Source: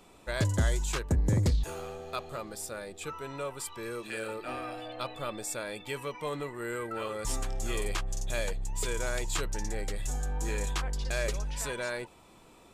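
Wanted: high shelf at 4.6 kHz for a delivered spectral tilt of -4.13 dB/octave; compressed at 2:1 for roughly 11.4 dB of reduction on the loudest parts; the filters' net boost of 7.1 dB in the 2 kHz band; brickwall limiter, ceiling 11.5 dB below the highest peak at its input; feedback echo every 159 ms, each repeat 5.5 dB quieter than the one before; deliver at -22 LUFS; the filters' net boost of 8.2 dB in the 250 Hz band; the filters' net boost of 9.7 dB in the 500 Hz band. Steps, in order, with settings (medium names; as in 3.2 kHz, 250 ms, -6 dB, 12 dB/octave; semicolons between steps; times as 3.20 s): peaking EQ 250 Hz +8 dB; peaking EQ 500 Hz +9 dB; peaking EQ 2 kHz +7.5 dB; treble shelf 4.6 kHz +5.5 dB; compression 2:1, threshold -39 dBFS; peak limiter -31.5 dBFS; feedback delay 159 ms, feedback 53%, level -5.5 dB; trim +17.5 dB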